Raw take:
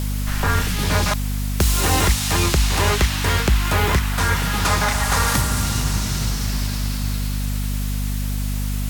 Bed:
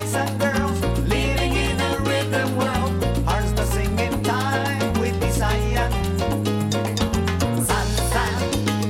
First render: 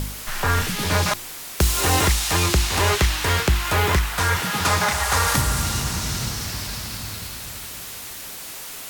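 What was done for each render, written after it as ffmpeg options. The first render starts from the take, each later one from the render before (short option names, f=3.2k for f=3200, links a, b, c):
-af "bandreject=f=50:t=h:w=4,bandreject=f=100:t=h:w=4,bandreject=f=150:t=h:w=4,bandreject=f=200:t=h:w=4,bandreject=f=250:t=h:w=4,bandreject=f=300:t=h:w=4,bandreject=f=350:t=h:w=4"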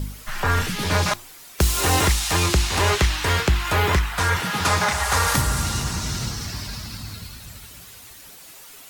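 -af "afftdn=nr=10:nf=-35"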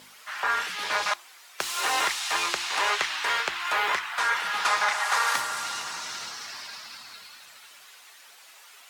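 -af "highpass=910,aemphasis=mode=reproduction:type=50kf"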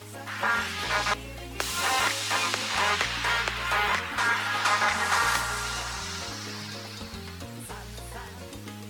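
-filter_complex "[1:a]volume=-19dB[a];[0:a][a]amix=inputs=2:normalize=0"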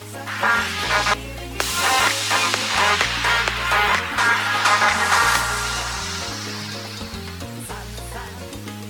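-af "volume=7.5dB"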